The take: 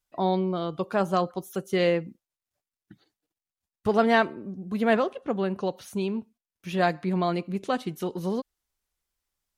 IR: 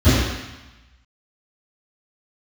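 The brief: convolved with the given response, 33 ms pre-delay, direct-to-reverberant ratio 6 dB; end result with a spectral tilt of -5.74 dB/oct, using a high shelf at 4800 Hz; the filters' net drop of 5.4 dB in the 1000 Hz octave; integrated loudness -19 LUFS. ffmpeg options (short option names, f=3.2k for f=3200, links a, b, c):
-filter_complex "[0:a]equalizer=f=1k:t=o:g=-9,highshelf=f=4.8k:g=9,asplit=2[a][b];[1:a]atrim=start_sample=2205,adelay=33[c];[b][c]afir=irnorm=-1:irlink=0,volume=-29dB[d];[a][d]amix=inputs=2:normalize=0,volume=5.5dB"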